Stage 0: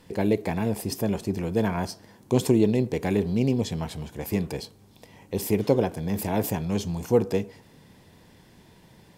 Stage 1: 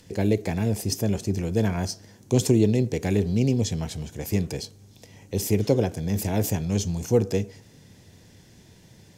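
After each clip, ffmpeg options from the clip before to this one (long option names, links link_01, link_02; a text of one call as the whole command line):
ffmpeg -i in.wav -filter_complex "[0:a]equalizer=frequency=100:width_type=o:width=0.67:gain=7,equalizer=frequency=1000:width_type=o:width=0.67:gain=-7,equalizer=frequency=6300:width_type=o:width=0.67:gain=9,acrossover=split=410|1300[link_01][link_02][link_03];[link_03]acompressor=mode=upward:threshold=-59dB:ratio=2.5[link_04];[link_01][link_02][link_04]amix=inputs=3:normalize=0" out.wav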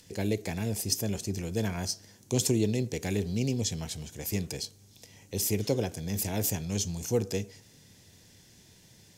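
ffmpeg -i in.wav -af "highshelf=frequency=2300:gain=9.5,volume=-7.5dB" out.wav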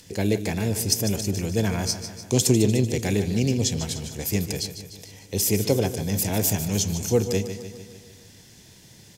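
ffmpeg -i in.wav -af "aecho=1:1:149|298|447|596|745|894|1043:0.282|0.163|0.0948|0.055|0.0319|0.0185|0.0107,volume=6.5dB" out.wav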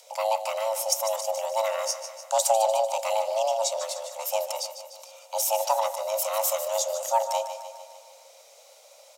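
ffmpeg -i in.wav -af "afreqshift=440,volume=-3dB" out.wav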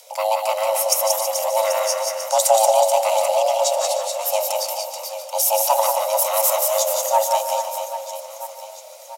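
ffmpeg -i in.wav -af "aexciter=amount=1.2:drive=8.5:freq=10000,aecho=1:1:180|432|784.8|1279|1970:0.631|0.398|0.251|0.158|0.1,volume=5dB" out.wav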